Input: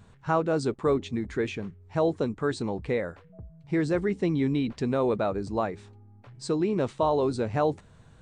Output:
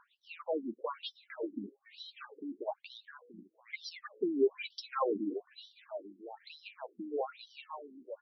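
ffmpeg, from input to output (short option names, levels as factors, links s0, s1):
-filter_complex "[0:a]aphaser=in_gain=1:out_gain=1:delay=3.8:decay=0.72:speed=0.3:type=triangular,acrossover=split=530|3700[s0][s1][s2];[s2]dynaudnorm=f=640:g=5:m=1.88[s3];[s0][s1][s3]amix=inputs=3:normalize=0,aecho=1:1:691:0.188,afftfilt=real='re*between(b*sr/1024,250*pow(4300/250,0.5+0.5*sin(2*PI*1.1*pts/sr))/1.41,250*pow(4300/250,0.5+0.5*sin(2*PI*1.1*pts/sr))*1.41)':imag='im*between(b*sr/1024,250*pow(4300/250,0.5+0.5*sin(2*PI*1.1*pts/sr))/1.41,250*pow(4300/250,0.5+0.5*sin(2*PI*1.1*pts/sr))*1.41)':win_size=1024:overlap=0.75,volume=0.708"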